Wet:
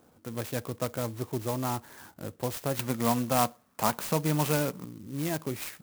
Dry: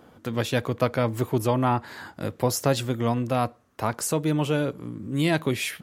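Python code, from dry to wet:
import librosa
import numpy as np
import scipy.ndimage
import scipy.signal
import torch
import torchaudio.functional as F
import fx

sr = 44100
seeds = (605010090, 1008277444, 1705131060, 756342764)

y = fx.curve_eq(x, sr, hz=(110.0, 190.0, 340.0, 920.0, 1500.0, 2600.0, 13000.0), db=(0, 11, 1, 11, 8, 13, -4), at=(2.79, 4.85))
y = fx.clock_jitter(y, sr, seeds[0], jitter_ms=0.081)
y = y * librosa.db_to_amplitude(-8.5)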